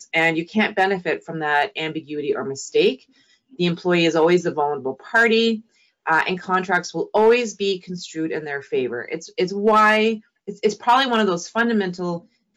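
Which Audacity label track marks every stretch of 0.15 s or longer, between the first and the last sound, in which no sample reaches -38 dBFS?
2.960000	3.540000	silence
5.600000	6.060000	silence
10.190000	10.480000	silence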